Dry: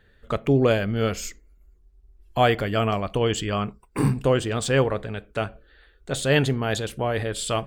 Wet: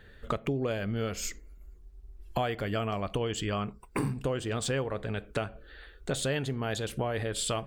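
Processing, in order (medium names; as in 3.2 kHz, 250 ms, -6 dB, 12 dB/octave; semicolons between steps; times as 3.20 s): compression 6:1, threshold -34 dBFS, peak gain reduction 18.5 dB; trim +5 dB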